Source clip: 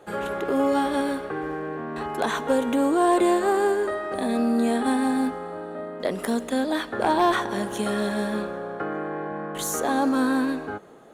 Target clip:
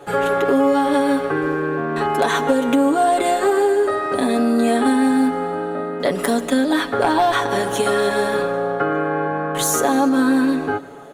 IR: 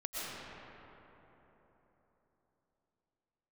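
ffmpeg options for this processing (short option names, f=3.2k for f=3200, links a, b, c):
-filter_complex "[0:a]aecho=1:1:7.1:0.75,acompressor=threshold=-21dB:ratio=5,asplit=2[a][b];[1:a]atrim=start_sample=2205,atrim=end_sample=6615,adelay=150[c];[b][c]afir=irnorm=-1:irlink=0,volume=-17dB[d];[a][d]amix=inputs=2:normalize=0,volume=7.5dB"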